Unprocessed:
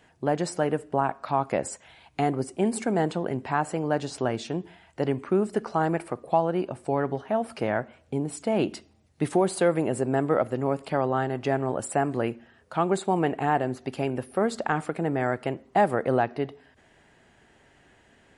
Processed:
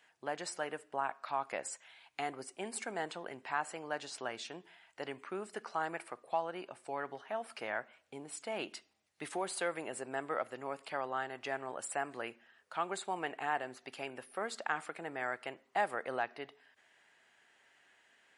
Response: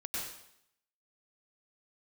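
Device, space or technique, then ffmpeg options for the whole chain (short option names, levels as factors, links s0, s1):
filter by subtraction: -filter_complex "[0:a]asplit=2[s0][s1];[s1]lowpass=1900,volume=-1[s2];[s0][s2]amix=inputs=2:normalize=0,volume=0.473"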